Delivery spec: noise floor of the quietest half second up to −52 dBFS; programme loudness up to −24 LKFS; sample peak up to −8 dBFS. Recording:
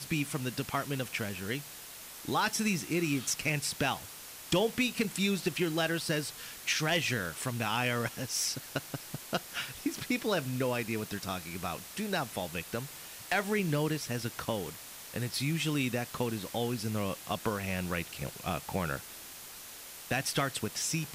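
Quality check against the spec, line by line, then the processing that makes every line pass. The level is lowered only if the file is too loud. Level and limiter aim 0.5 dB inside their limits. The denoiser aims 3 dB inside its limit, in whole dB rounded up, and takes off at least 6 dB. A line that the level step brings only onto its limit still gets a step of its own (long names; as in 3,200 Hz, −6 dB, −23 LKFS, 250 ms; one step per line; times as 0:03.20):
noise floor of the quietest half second −47 dBFS: out of spec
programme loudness −33.0 LKFS: in spec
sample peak −18.0 dBFS: in spec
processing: broadband denoise 8 dB, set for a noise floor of −47 dBFS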